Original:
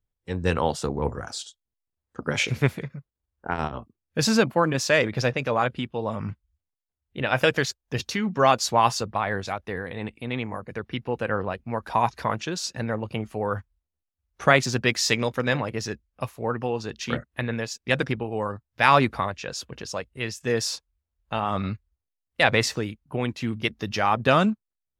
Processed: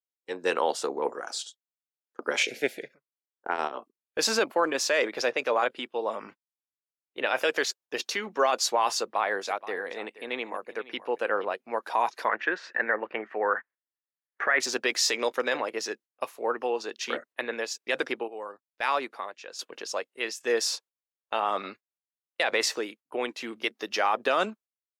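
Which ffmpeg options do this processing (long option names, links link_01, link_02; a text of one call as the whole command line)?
ffmpeg -i in.wav -filter_complex "[0:a]asplit=3[link_01][link_02][link_03];[link_01]afade=type=out:start_time=2.42:duration=0.02[link_04];[link_02]asuperstop=centerf=1100:order=4:qfactor=1.1,afade=type=in:start_time=2.42:duration=0.02,afade=type=out:start_time=2.92:duration=0.02[link_05];[link_03]afade=type=in:start_time=2.92:duration=0.02[link_06];[link_04][link_05][link_06]amix=inputs=3:normalize=0,asplit=3[link_07][link_08][link_09];[link_07]afade=type=out:start_time=9.41:duration=0.02[link_10];[link_08]aecho=1:1:475:0.15,afade=type=in:start_time=9.41:duration=0.02,afade=type=out:start_time=11.44:duration=0.02[link_11];[link_09]afade=type=in:start_time=11.44:duration=0.02[link_12];[link_10][link_11][link_12]amix=inputs=3:normalize=0,asettb=1/sr,asplit=3[link_13][link_14][link_15];[link_13]atrim=end=12.284[link_16];[link_14]atrim=start=12.28:end=14.6,asetpts=PTS-STARTPTS,afade=type=in:duration=0.004:curve=qsin,afade=type=out:start_time=2.316:duration=0.004:curve=qsin,lowpass=frequency=1800:width_type=q:width=5.6[link_17];[link_15]atrim=start=14.596[link_18];[link_16][link_17]acrossfade=duration=0.004:curve1=hsin:curve2=qsin[link_19];[link_19][link_18]acrossfade=duration=0.004:curve1=qsin:curve2=hsin,asplit=3[link_20][link_21][link_22];[link_20]atrim=end=18.282[link_23];[link_21]atrim=start=18.278:end=19.592,asetpts=PTS-STARTPTS,volume=-9dB[link_24];[link_22]atrim=start=19.588[link_25];[link_23][link_24]acrossfade=duration=0.004:curve1=hsin:curve2=hsin[link_26];[link_26][link_25]acrossfade=duration=0.004:curve1=hsin:curve2=hsin,highpass=frequency=340:width=0.5412,highpass=frequency=340:width=1.3066,agate=range=-14dB:threshold=-48dB:ratio=16:detection=peak,alimiter=limit=-13.5dB:level=0:latency=1:release=23" out.wav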